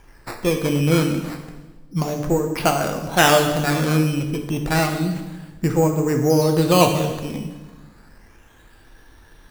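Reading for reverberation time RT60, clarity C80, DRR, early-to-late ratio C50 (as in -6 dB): 1.2 s, 8.5 dB, 3.5 dB, 6.5 dB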